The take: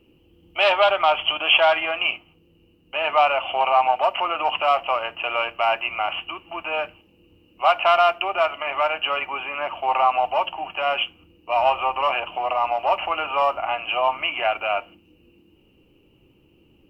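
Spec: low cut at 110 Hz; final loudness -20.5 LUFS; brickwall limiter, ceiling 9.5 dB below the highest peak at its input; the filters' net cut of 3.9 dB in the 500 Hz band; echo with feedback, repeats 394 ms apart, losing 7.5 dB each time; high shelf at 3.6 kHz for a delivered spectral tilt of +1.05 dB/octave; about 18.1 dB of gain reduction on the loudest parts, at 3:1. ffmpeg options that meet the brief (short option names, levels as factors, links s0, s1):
-af "highpass=110,equalizer=f=500:t=o:g=-5.5,highshelf=f=3600:g=-5.5,acompressor=threshold=0.00891:ratio=3,alimiter=level_in=2.51:limit=0.0631:level=0:latency=1,volume=0.398,aecho=1:1:394|788|1182|1576|1970:0.422|0.177|0.0744|0.0312|0.0131,volume=10.6"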